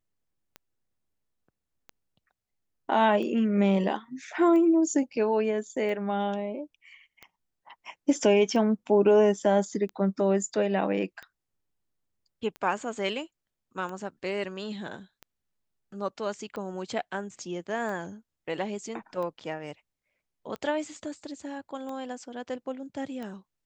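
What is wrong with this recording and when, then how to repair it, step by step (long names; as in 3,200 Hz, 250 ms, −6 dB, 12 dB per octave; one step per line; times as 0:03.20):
scratch tick 45 rpm −26 dBFS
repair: click removal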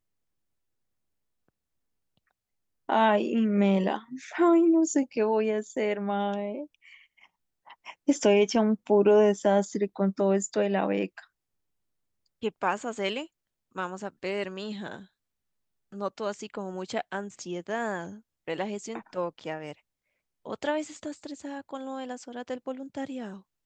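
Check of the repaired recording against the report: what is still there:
none of them is left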